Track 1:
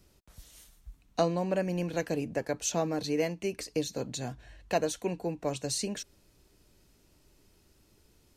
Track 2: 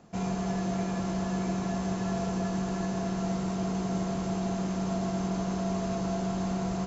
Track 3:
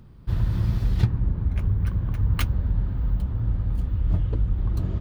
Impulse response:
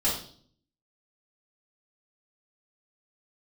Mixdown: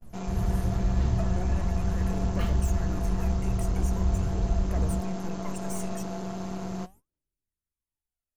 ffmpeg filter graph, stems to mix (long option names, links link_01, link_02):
-filter_complex "[0:a]equalizer=frequency=11000:width_type=o:width=0.8:gain=10,aeval=exprs='(tanh(35.5*val(0)+0.4)-tanh(0.4))/35.5':channel_layout=same,aphaser=in_gain=1:out_gain=1:delay=1.6:decay=0.72:speed=0.42:type=triangular,volume=0dB[link_01];[1:a]aeval=exprs='0.106*(cos(1*acos(clip(val(0)/0.106,-1,1)))-cos(1*PI/2))+0.015*(cos(4*acos(clip(val(0)/0.106,-1,1)))-cos(4*PI/2))':channel_layout=same,volume=0dB[link_02];[2:a]lowpass=frequency=3900:poles=1,volume=-8dB,asplit=2[link_03][link_04];[link_04]volume=-4.5dB[link_05];[link_01][link_03]amix=inputs=2:normalize=0,asuperstop=centerf=4000:order=4:qfactor=1.2,alimiter=limit=-23.5dB:level=0:latency=1:release=85,volume=0dB[link_06];[3:a]atrim=start_sample=2205[link_07];[link_05][link_07]afir=irnorm=-1:irlink=0[link_08];[link_02][link_06][link_08]amix=inputs=3:normalize=0,agate=range=-31dB:threshold=-46dB:ratio=16:detection=peak,flanger=delay=1.4:depth=4.2:regen=88:speed=1.1:shape=sinusoidal"